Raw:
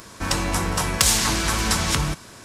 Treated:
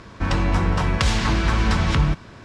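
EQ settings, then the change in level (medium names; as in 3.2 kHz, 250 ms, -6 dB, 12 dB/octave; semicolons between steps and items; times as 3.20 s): low-pass 3.2 kHz 12 dB/octave; bass shelf 200 Hz +8 dB; 0.0 dB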